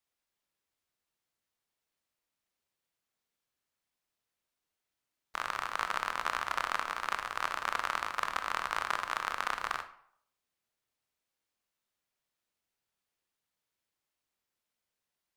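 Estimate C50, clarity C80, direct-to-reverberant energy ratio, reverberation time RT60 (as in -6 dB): 11.5 dB, 15.0 dB, 8.5 dB, 0.65 s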